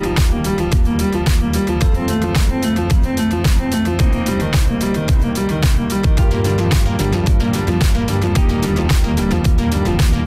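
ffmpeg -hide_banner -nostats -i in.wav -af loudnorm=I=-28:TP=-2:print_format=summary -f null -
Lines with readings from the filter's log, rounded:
Input Integrated:    -16.5 LUFS
Input True Peak:      -5.2 dBTP
Input LRA:             0.8 LU
Input Threshold:     -26.5 LUFS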